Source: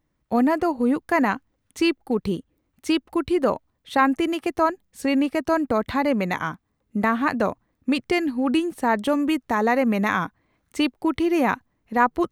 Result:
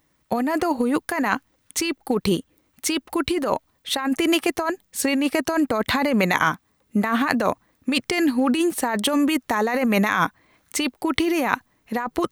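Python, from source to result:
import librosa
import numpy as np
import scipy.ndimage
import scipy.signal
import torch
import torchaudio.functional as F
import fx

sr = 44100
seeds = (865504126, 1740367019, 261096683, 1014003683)

y = fx.tilt_eq(x, sr, slope=2.0)
y = fx.over_compress(y, sr, threshold_db=-26.0, ratio=-1.0)
y = F.gain(torch.from_numpy(y), 5.5).numpy()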